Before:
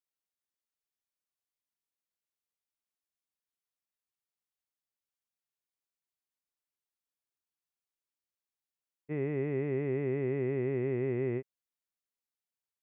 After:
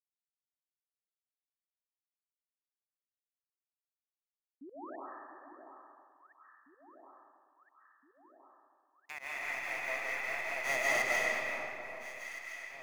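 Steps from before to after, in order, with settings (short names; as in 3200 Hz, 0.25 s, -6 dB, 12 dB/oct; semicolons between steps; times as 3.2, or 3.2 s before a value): spectral gate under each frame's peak -20 dB weak; gate with hold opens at -38 dBFS; tilt +3 dB/oct; in parallel at +1 dB: limiter -43.5 dBFS, peak gain reduction 7 dB; on the sum: sample leveller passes 5; painted sound rise, 4.61–4.96, 250–1900 Hz -52 dBFS; pump 147 bpm, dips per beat 2, -22 dB, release 0.11 s; echo with dull and thin repeats by turns 0.683 s, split 1300 Hz, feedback 78%, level -11 dB; digital reverb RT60 1.7 s, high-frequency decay 0.8×, pre-delay 0.11 s, DRR -5.5 dB; mismatched tape noise reduction encoder only; gain +2.5 dB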